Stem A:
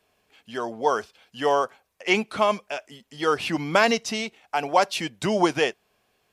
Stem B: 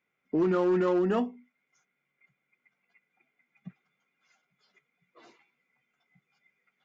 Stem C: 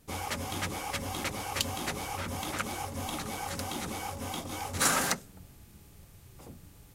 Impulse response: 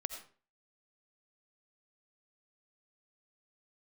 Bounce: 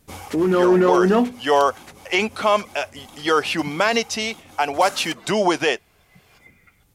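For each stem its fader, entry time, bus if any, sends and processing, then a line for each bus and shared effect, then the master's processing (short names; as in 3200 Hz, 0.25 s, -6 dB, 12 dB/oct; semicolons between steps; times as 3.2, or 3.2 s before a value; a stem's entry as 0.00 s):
-1.0 dB, 0.05 s, bus A, no send, low shelf 170 Hz -11.5 dB
+2.5 dB, 0.00 s, bus A, no send, dry
+3.0 dB, 0.00 s, no bus, no send, auto duck -12 dB, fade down 0.70 s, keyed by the second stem
bus A: 0.0 dB, AGC gain up to 16 dB; limiter -6.5 dBFS, peak gain reduction 5.5 dB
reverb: off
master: dry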